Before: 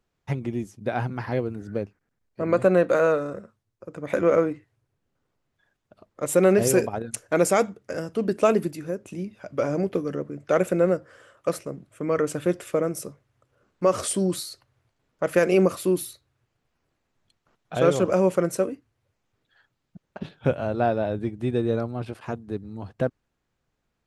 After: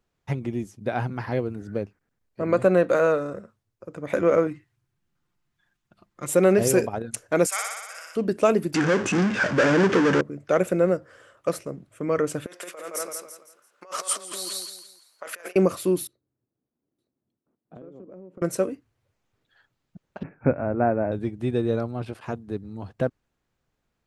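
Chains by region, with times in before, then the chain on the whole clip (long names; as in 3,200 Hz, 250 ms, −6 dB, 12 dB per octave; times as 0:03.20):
0:04.47–0:06.28: parametric band 530 Hz −12 dB 1 octave + comb filter 5.7 ms, depth 39%
0:07.46–0:08.16: Bessel high-pass filter 1,600 Hz, order 4 + flutter between parallel walls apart 10.4 metres, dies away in 1.3 s
0:08.74–0:10.21: power curve on the samples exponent 0.35 + loudspeaker in its box 150–6,900 Hz, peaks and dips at 650 Hz −7 dB, 1,600 Hz +8 dB, 4,000 Hz −6 dB
0:12.46–0:15.56: repeating echo 168 ms, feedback 34%, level −3.5 dB + compressor whose output falls as the input rises −26 dBFS, ratio −0.5 + high-pass filter 860 Hz
0:16.07–0:18.42: resonant band-pass 270 Hz, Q 2 + single-tap delay 914 ms −10.5 dB + downward compressor 20 to 1, threshold −39 dBFS
0:20.23–0:21.12: Butterworth low-pass 2,400 Hz 96 dB per octave + parametric band 270 Hz +6 dB 0.44 octaves
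whole clip: no processing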